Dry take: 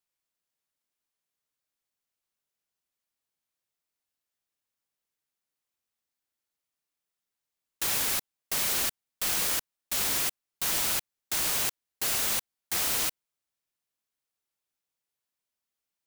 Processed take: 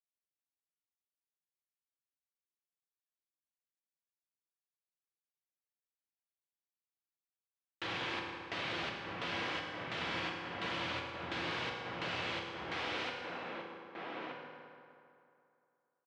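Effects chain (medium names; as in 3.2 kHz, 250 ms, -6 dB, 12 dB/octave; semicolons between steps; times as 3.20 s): echo from a far wall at 210 m, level -6 dB; gate with hold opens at -39 dBFS; high-pass 80 Hz 24 dB/octave, from 12.90 s 170 Hz; compression 2:1, threshold -34 dBFS, peak gain reduction 5.5 dB; low-pass 3.3 kHz 24 dB/octave; reverberation RT60 2.6 s, pre-delay 3 ms, DRR -0.5 dB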